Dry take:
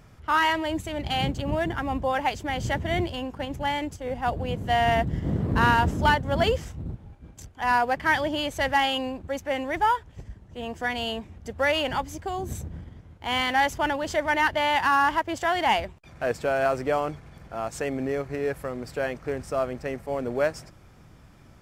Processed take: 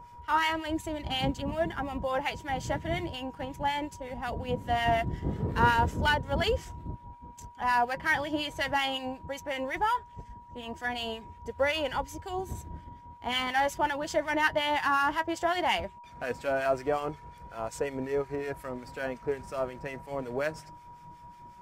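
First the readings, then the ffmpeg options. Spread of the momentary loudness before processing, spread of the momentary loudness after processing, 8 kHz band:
12 LU, 16 LU, -3.5 dB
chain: -filter_complex "[0:a]flanger=delay=2:depth=4.5:regen=56:speed=0.17:shape=sinusoidal,aeval=exprs='val(0)+0.00447*sin(2*PI*960*n/s)':c=same,acrossover=split=1300[a][b];[a]aeval=exprs='val(0)*(1-0.7/2+0.7/2*cos(2*PI*5.5*n/s))':c=same[c];[b]aeval=exprs='val(0)*(1-0.7/2-0.7/2*cos(2*PI*5.5*n/s))':c=same[d];[c][d]amix=inputs=2:normalize=0,volume=3dB"

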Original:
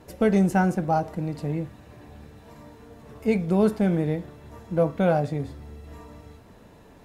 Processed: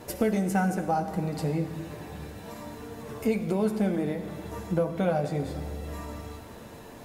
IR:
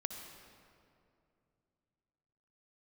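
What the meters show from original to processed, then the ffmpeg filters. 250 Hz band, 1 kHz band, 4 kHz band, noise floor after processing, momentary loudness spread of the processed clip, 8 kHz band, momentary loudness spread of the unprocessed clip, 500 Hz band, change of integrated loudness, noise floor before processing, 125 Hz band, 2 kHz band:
-4.0 dB, -3.0 dB, +1.0 dB, -45 dBFS, 15 LU, n/a, 17 LU, -4.0 dB, -5.0 dB, -51 dBFS, -4.0 dB, -3.0 dB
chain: -filter_complex "[0:a]lowshelf=f=170:g=-5.5,acompressor=threshold=-33dB:ratio=3,flanger=delay=8.5:depth=3.1:regen=-40:speed=0.29:shape=sinusoidal,asplit=2[a][b];[1:a]atrim=start_sample=2205,highshelf=f=5.5k:g=11[c];[b][c]afir=irnorm=-1:irlink=0,volume=0.5dB[d];[a][d]amix=inputs=2:normalize=0,volume=5dB"

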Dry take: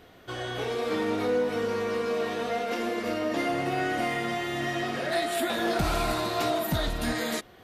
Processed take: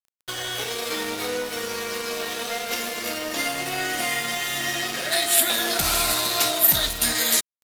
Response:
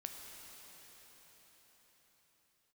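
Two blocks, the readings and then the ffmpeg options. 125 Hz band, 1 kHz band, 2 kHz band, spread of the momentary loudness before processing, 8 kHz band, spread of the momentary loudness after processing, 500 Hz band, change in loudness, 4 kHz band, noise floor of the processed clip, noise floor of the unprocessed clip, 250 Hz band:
-4.0 dB, +0.5 dB, +5.5 dB, 4 LU, +18.0 dB, 11 LU, -2.5 dB, +6.0 dB, +11.0 dB, under -85 dBFS, -53 dBFS, -4.5 dB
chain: -filter_complex "[0:a]bandreject=f=50:t=h:w=6,bandreject=f=100:t=h:w=6,bandreject=f=150:t=h:w=6,bandreject=f=200:t=h:w=6,bandreject=f=250:t=h:w=6,bandreject=f=300:t=h:w=6,bandreject=f=350:t=h:w=6,asplit=2[a][b];[b]acompressor=threshold=-38dB:ratio=6,volume=2dB[c];[a][c]amix=inputs=2:normalize=0,crystalizer=i=9.5:c=0,aeval=exprs='sgn(val(0))*max(abs(val(0))-0.0376,0)':c=same,acrusher=bits=6:mix=0:aa=0.000001,volume=-3.5dB"

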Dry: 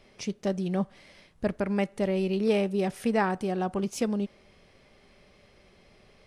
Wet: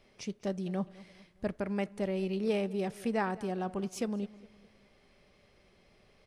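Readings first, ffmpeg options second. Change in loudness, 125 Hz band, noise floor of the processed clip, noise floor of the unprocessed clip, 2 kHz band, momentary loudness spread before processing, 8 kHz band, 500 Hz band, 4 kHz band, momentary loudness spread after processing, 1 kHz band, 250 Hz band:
-6.0 dB, -6.0 dB, -65 dBFS, -59 dBFS, -6.0 dB, 8 LU, -6.0 dB, -6.0 dB, -6.0 dB, 8 LU, -6.0 dB, -6.0 dB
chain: -filter_complex "[0:a]asplit=2[a][b];[b]adelay=206,lowpass=f=4.3k:p=1,volume=-19.5dB,asplit=2[c][d];[d]adelay=206,lowpass=f=4.3k:p=1,volume=0.44,asplit=2[e][f];[f]adelay=206,lowpass=f=4.3k:p=1,volume=0.44[g];[a][c][e][g]amix=inputs=4:normalize=0,volume=-6dB"

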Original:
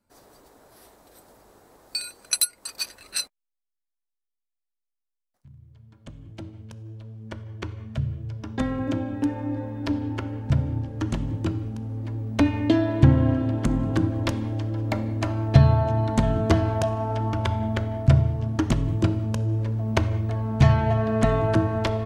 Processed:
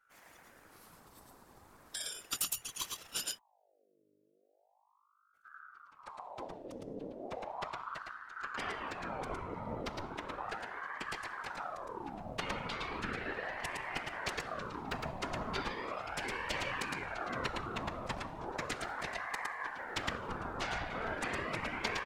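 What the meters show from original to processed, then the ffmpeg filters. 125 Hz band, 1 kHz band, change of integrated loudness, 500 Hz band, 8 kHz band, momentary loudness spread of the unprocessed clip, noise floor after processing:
-28.0 dB, -7.0 dB, -15.5 dB, -14.0 dB, -9.5 dB, 15 LU, -73 dBFS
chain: -filter_complex "[0:a]asplit=2[a][b];[b]aecho=0:1:111:0.668[c];[a][c]amix=inputs=2:normalize=0,afftfilt=real='re*lt(hypot(re,im),0.251)':imag='im*lt(hypot(re,im),0.251)':win_size=1024:overlap=0.75,afftfilt=real='hypot(re,im)*cos(2*PI*random(0))':imag='hypot(re,im)*sin(2*PI*random(1))':win_size=512:overlap=0.75,aeval=exprs='val(0)+0.000282*(sin(2*PI*50*n/s)+sin(2*PI*2*50*n/s)/2+sin(2*PI*3*50*n/s)/3+sin(2*PI*4*50*n/s)/4+sin(2*PI*5*50*n/s)/5)':c=same,aeval=exprs='val(0)*sin(2*PI*890*n/s+890*0.6/0.36*sin(2*PI*0.36*n/s))':c=same,volume=2dB"

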